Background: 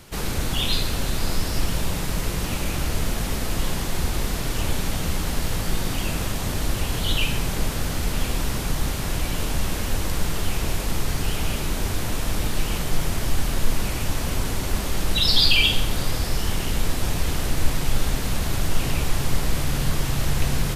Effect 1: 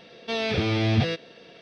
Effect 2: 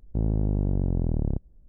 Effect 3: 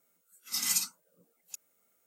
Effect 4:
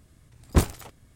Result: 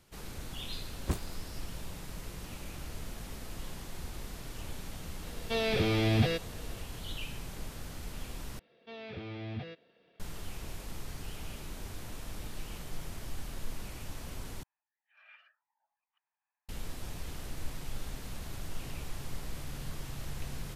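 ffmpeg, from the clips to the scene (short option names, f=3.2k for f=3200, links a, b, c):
-filter_complex "[1:a]asplit=2[a][b];[0:a]volume=-17.5dB[c];[a]equalizer=f=450:w=5.5:g=3[d];[b]lowpass=3.2k[e];[3:a]highpass=f=350:t=q:w=0.5412,highpass=f=350:t=q:w=1.307,lowpass=f=2.2k:t=q:w=0.5176,lowpass=f=2.2k:t=q:w=0.7071,lowpass=f=2.2k:t=q:w=1.932,afreqshift=370[f];[c]asplit=3[g][h][i];[g]atrim=end=8.594[j];[e]atrim=end=1.61,asetpts=PTS-STARTPTS,volume=-17.5dB[k];[h]atrim=start=10.196:end=14.634[l];[f]atrim=end=2.06,asetpts=PTS-STARTPTS,volume=-13dB[m];[i]atrim=start=16.686[n];[4:a]atrim=end=1.15,asetpts=PTS-STARTPTS,volume=-13.5dB,afade=t=in:d=0.004:c=hsin,afade=t=out:st=1.146:d=0.004:c=hsin,adelay=530[o];[d]atrim=end=1.61,asetpts=PTS-STARTPTS,volume=-4.5dB,afade=t=in:d=0.004:c=hsin,afade=t=out:st=1.606:d=0.004:c=hsin,adelay=5220[p];[j][k]acrossfade=d=0.004:c1=hsin:c2=hsin[q];[q][l]acrossfade=d=0.004:c1=hsin:c2=hsin[r];[r][m]acrossfade=d=0.004:c1=hsin:c2=hsin[s];[s][n]acrossfade=d=0.004:c1=hsin:c2=hsin[t];[t][o][p]amix=inputs=3:normalize=0"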